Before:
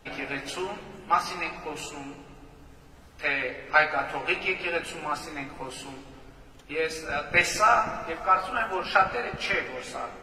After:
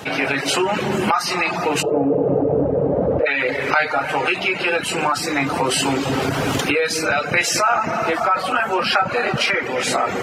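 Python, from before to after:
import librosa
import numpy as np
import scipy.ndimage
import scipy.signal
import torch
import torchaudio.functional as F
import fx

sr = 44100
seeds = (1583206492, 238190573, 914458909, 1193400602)

y = fx.recorder_agc(x, sr, target_db=-14.5, rise_db_per_s=36.0, max_gain_db=30)
y = scipy.signal.sosfilt(scipy.signal.butter(4, 99.0, 'highpass', fs=sr, output='sos'), y)
y = fx.dereverb_blind(y, sr, rt60_s=0.51)
y = fx.lowpass_res(y, sr, hz=530.0, q=5.6, at=(1.81, 3.25), fade=0.02)
y = fx.env_flatten(y, sr, amount_pct=50)
y = F.gain(torch.from_numpy(y), 1.5).numpy()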